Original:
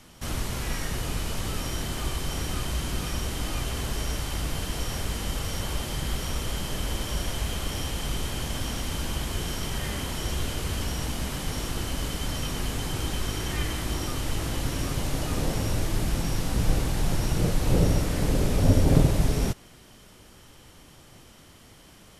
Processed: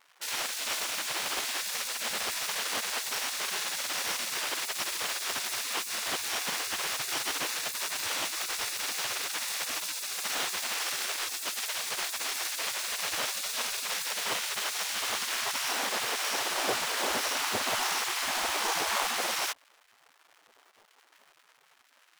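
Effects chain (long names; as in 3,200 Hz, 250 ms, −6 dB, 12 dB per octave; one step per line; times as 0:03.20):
phase distortion by the signal itself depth 0.38 ms
slack as between gear wheels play −41 dBFS
gate on every frequency bin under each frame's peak −25 dB weak
level +8.5 dB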